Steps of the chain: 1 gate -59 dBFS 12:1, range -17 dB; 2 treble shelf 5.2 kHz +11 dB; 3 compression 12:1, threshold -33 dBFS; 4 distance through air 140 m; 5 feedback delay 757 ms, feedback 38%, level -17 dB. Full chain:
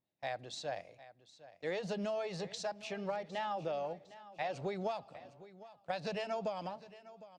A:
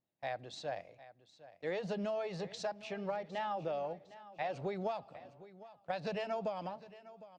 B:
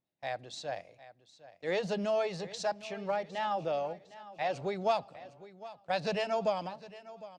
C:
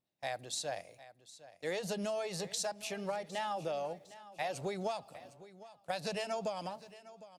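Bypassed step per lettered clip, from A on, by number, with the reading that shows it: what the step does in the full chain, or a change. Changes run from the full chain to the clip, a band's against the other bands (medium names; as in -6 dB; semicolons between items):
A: 2, 8 kHz band -5.0 dB; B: 3, mean gain reduction 3.5 dB; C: 4, 8 kHz band +10.5 dB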